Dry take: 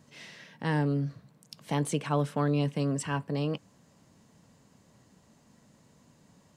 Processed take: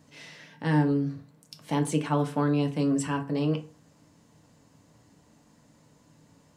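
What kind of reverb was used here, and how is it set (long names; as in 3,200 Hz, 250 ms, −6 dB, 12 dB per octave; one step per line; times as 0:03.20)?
feedback delay network reverb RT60 0.38 s, low-frequency decay 1×, high-frequency decay 0.65×, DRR 4 dB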